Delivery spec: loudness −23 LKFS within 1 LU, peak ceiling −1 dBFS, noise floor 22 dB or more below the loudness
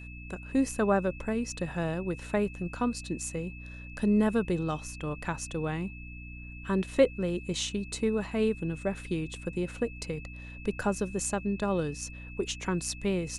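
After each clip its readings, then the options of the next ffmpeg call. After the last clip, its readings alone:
mains hum 60 Hz; hum harmonics up to 300 Hz; level of the hum −41 dBFS; interfering tone 2,600 Hz; level of the tone −47 dBFS; integrated loudness −31.0 LKFS; sample peak −10.0 dBFS; target loudness −23.0 LKFS
→ -af "bandreject=frequency=60:width_type=h:width=4,bandreject=frequency=120:width_type=h:width=4,bandreject=frequency=180:width_type=h:width=4,bandreject=frequency=240:width_type=h:width=4,bandreject=frequency=300:width_type=h:width=4"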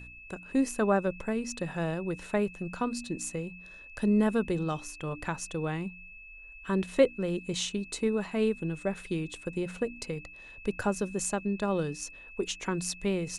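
mains hum none found; interfering tone 2,600 Hz; level of the tone −47 dBFS
→ -af "bandreject=frequency=2600:width=30"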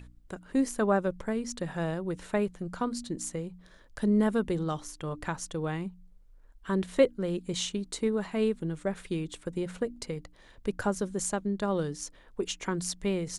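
interfering tone none found; integrated loudness −31.5 LKFS; sample peak −10.0 dBFS; target loudness −23.0 LKFS
→ -af "volume=8.5dB"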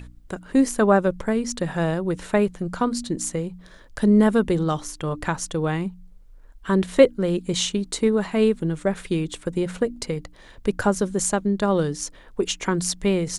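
integrated loudness −23.0 LKFS; sample peak −1.5 dBFS; background noise floor −48 dBFS

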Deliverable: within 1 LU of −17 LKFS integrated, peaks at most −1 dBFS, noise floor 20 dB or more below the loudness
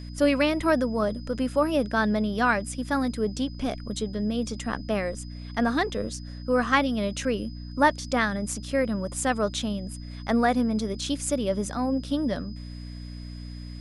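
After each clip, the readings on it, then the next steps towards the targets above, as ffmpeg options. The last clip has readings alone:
mains hum 60 Hz; hum harmonics up to 300 Hz; level of the hum −36 dBFS; interfering tone 5,000 Hz; level of the tone −50 dBFS; integrated loudness −26.5 LKFS; sample peak −6.5 dBFS; target loudness −17.0 LKFS
→ -af "bandreject=frequency=60:width_type=h:width=4,bandreject=frequency=120:width_type=h:width=4,bandreject=frequency=180:width_type=h:width=4,bandreject=frequency=240:width_type=h:width=4,bandreject=frequency=300:width_type=h:width=4"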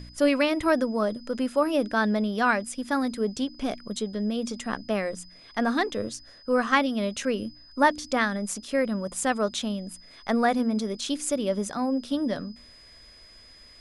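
mains hum none found; interfering tone 5,000 Hz; level of the tone −50 dBFS
→ -af "bandreject=frequency=5000:width=30"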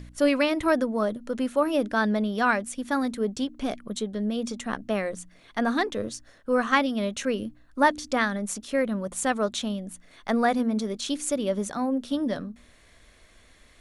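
interfering tone none found; integrated loudness −27.0 LKFS; sample peak −6.5 dBFS; target loudness −17.0 LKFS
→ -af "volume=10dB,alimiter=limit=-1dB:level=0:latency=1"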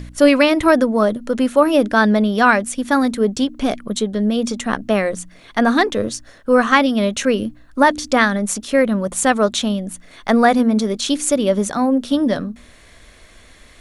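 integrated loudness −17.0 LKFS; sample peak −1.0 dBFS; background noise floor −46 dBFS

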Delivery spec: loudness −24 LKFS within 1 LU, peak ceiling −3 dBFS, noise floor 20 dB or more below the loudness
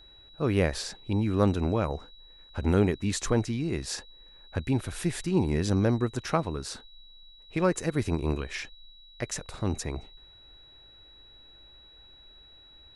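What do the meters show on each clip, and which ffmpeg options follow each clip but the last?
interfering tone 3,900 Hz; level of the tone −52 dBFS; integrated loudness −29.0 LKFS; sample peak −9.5 dBFS; target loudness −24.0 LKFS
→ -af "bandreject=frequency=3900:width=30"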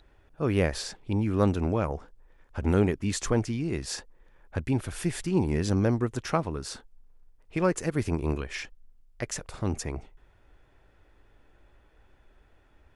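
interfering tone none found; integrated loudness −29.0 LKFS; sample peak −9.5 dBFS; target loudness −24.0 LKFS
→ -af "volume=5dB"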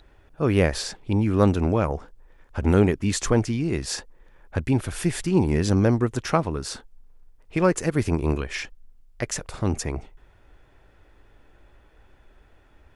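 integrated loudness −24.0 LKFS; sample peak −4.5 dBFS; background noise floor −56 dBFS

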